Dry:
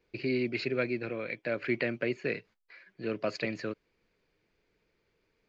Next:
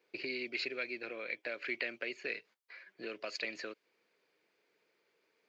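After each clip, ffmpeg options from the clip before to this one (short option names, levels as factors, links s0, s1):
-filter_complex "[0:a]highpass=380,acrossover=split=2100[s0][s1];[s0]acompressor=threshold=0.00708:ratio=4[s2];[s2][s1]amix=inputs=2:normalize=0,volume=1.12"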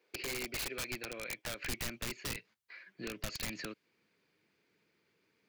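-af "highpass=82,aeval=exprs='(mod(42.2*val(0)+1,2)-1)/42.2':c=same,asubboost=boost=10:cutoff=170,volume=1.12"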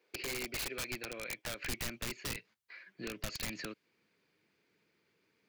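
-af anull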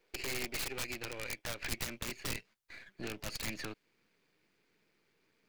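-af "aeval=exprs='if(lt(val(0),0),0.251*val(0),val(0))':c=same,volume=1.58"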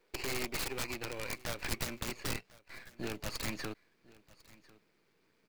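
-filter_complex "[0:a]asplit=2[s0][s1];[s1]acrusher=samples=13:mix=1:aa=0.000001,volume=0.398[s2];[s0][s2]amix=inputs=2:normalize=0,aecho=1:1:1048:0.0794"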